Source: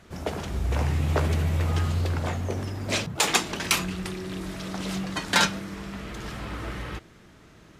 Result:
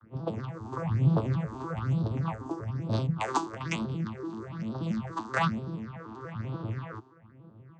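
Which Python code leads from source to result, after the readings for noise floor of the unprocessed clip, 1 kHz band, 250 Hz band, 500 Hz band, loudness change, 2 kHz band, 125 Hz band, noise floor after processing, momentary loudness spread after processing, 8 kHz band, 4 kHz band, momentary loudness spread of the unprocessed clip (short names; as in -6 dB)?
-52 dBFS, -2.5 dB, -0.5 dB, -4.0 dB, -4.5 dB, -10.0 dB, -2.0 dB, -55 dBFS, 11 LU, -19.0 dB, -17.0 dB, 14 LU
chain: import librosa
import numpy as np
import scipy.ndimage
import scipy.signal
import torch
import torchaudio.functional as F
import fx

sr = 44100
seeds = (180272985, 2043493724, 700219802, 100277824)

y = fx.vocoder_arp(x, sr, chord='minor triad', root=45, every_ms=96)
y = fx.peak_eq(y, sr, hz=1100.0, db=10.0, octaves=0.82)
y = fx.env_lowpass(y, sr, base_hz=1700.0, full_db=-27.0)
y = fx.phaser_stages(y, sr, stages=6, low_hz=140.0, high_hz=2100.0, hz=1.1, feedback_pct=30)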